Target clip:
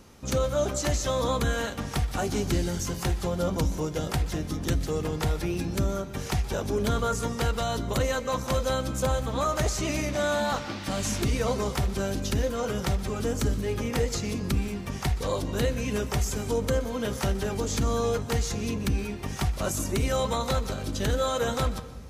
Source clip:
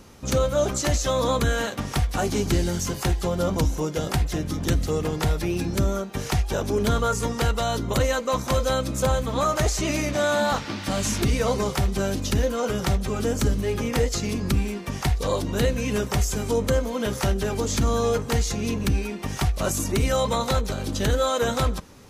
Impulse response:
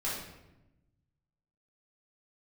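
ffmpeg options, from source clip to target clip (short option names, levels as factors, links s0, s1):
-filter_complex "[0:a]asplit=2[s0][s1];[1:a]atrim=start_sample=2205,adelay=122[s2];[s1][s2]afir=irnorm=-1:irlink=0,volume=0.112[s3];[s0][s3]amix=inputs=2:normalize=0,volume=0.631"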